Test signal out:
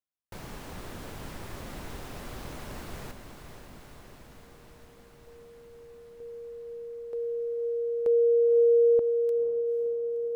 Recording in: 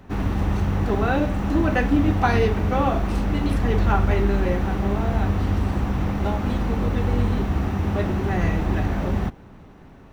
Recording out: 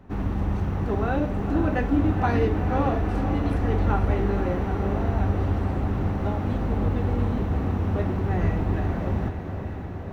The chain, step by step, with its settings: high shelf 2000 Hz -9 dB; on a send: diffused feedback echo 0.501 s, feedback 75%, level -8.5 dB; on the sum: gain -3 dB

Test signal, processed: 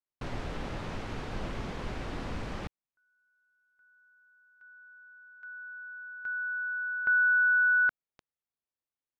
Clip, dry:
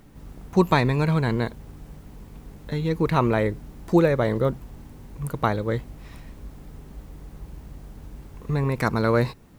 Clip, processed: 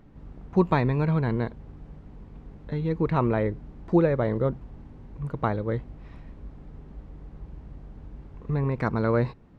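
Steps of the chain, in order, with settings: tape spacing loss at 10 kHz 27 dB; gain -1.5 dB

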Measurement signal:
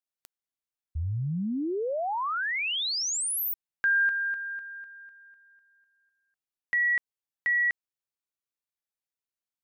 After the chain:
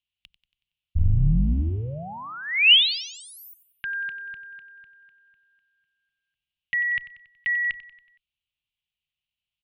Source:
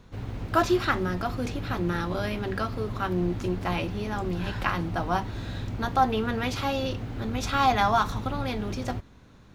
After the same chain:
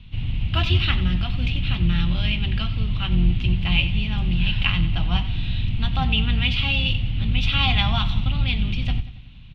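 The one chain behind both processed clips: octaver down 2 oct, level +2 dB; EQ curve 160 Hz 0 dB, 430 Hz -22 dB, 760 Hz -15 dB, 1600 Hz -14 dB, 2900 Hz +11 dB, 6600 Hz -23 dB; feedback echo 93 ms, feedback 51%, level -15 dB; gain +7.5 dB

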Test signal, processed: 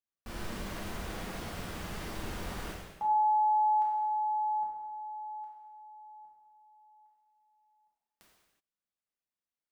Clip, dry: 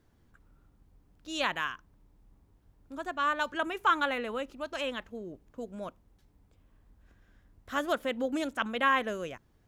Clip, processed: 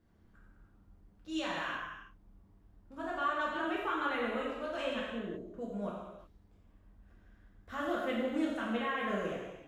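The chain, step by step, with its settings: high shelf 3500 Hz -9.5 dB; limiter -25.5 dBFS; non-linear reverb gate 0.4 s falling, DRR -6 dB; gain -6 dB

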